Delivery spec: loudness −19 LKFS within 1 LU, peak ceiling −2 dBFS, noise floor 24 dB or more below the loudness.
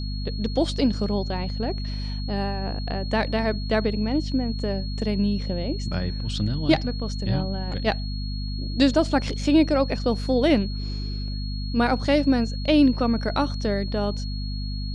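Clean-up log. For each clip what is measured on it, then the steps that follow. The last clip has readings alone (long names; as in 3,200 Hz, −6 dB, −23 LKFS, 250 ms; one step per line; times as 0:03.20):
mains hum 50 Hz; hum harmonics up to 250 Hz; level of the hum −27 dBFS; interfering tone 4,300 Hz; level of the tone −38 dBFS; integrated loudness −24.5 LKFS; sample peak −4.5 dBFS; target loudness −19.0 LKFS
→ hum removal 50 Hz, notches 5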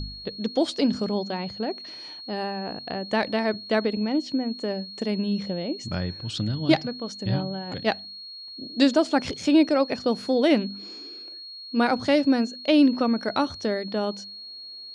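mains hum none found; interfering tone 4,300 Hz; level of the tone −38 dBFS
→ notch filter 4,300 Hz, Q 30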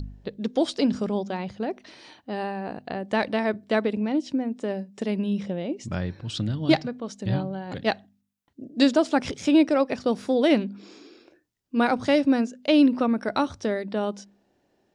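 interfering tone none found; integrated loudness −25.5 LKFS; sample peak −5.5 dBFS; target loudness −19.0 LKFS
→ level +6.5 dB
brickwall limiter −2 dBFS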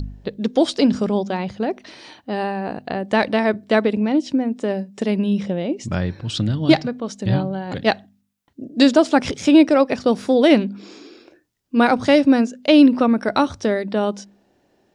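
integrated loudness −19.0 LKFS; sample peak −2.0 dBFS; background noise floor −63 dBFS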